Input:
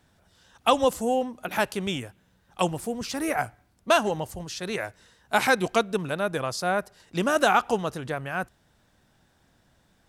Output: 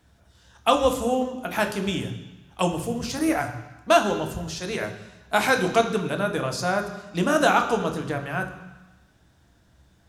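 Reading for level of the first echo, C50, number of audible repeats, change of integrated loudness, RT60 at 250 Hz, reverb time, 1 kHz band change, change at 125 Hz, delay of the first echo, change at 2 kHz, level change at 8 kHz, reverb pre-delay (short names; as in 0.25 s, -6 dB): none, 9.5 dB, none, +2.0 dB, 1.1 s, 1.1 s, +1.5 dB, +4.5 dB, none, +1.5 dB, +1.5 dB, 3 ms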